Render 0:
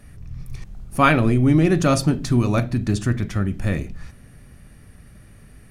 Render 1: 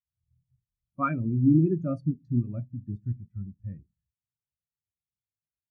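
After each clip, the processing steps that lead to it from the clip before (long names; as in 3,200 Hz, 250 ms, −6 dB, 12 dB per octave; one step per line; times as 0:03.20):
high-pass filter 63 Hz
every bin expanded away from the loudest bin 2.5 to 1
level −8.5 dB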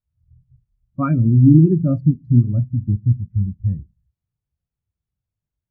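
spectral tilt −4.5 dB per octave
in parallel at −1 dB: downward compressor, threshold −19 dBFS, peak gain reduction 13 dB
on the sum: level −2 dB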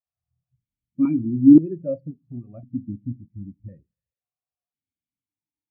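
formant filter that steps through the vowels 1.9 Hz
level +5.5 dB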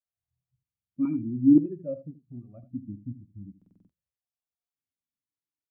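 single-tap delay 79 ms −14.5 dB
buffer that repeats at 0:00.64/0:03.57, samples 2,048, times 6
level −7 dB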